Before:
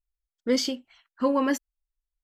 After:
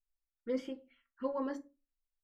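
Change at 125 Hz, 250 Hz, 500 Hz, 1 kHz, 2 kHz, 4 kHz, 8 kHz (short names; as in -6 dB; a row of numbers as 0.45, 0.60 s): n/a, -13.0 dB, -10.0 dB, -13.5 dB, -18.0 dB, -25.5 dB, under -25 dB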